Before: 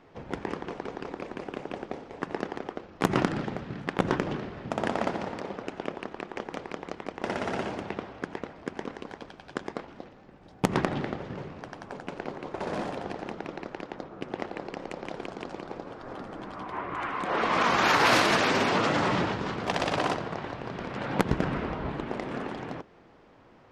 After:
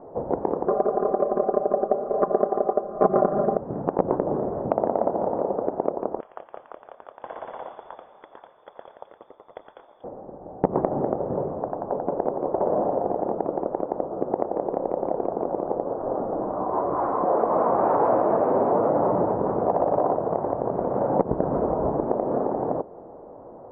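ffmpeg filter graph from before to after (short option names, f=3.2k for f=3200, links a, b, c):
-filter_complex "[0:a]asettb=1/sr,asplit=3[a][b][c];[a]atrim=end=0.684[d];[b]atrim=start=0.68:end=3.57,asetpts=PTS-STARTPTS,afade=t=in:d=0.004:c=qsin,afade=t=out:st=2.886:d=0.004:c=qsin,asuperstop=centerf=900:order=8:qfactor=3.8,equalizer=f=970:w=0.77:g=12,aecho=1:1:5:0.96,atrim=end_sample=127449[e];[c]atrim=start=3.566[f];[d][e]acrossfade=d=0.004:c1=hsin:c2=qsin[g];[g][f]acrossfade=d=0.004:c1=qsin:c2=hsin,asettb=1/sr,asplit=3[h][i][j];[h]atrim=end=6.204[k];[i]atrim=start=6.2:end=10.04,asetpts=PTS-STARTPTS,afade=t=in:d=0.004:c=qsin,afade=t=out:st=3.836:d=0.004:c=qsin,asubboost=boost=9.5:cutoff=230,lowpass=f=3.1k:t=q:w=0.5098,lowpass=f=3.1k:t=q:w=0.6013,lowpass=f=3.1k:t=q:w=0.9,lowpass=f=3.1k:t=q:w=2.563,afreqshift=-3600[l];[j]atrim=start=10.036[m];[k][l]acrossfade=d=0.004:c1=hsin:c2=qsin[n];[n][m]acrossfade=d=0.004:c1=qsin:c2=hsin,lowpass=f=1k:w=0.5412,lowpass=f=1k:w=1.3066,equalizer=f=580:w=0.78:g=13.5,acompressor=threshold=-25dB:ratio=3,volume=4.5dB"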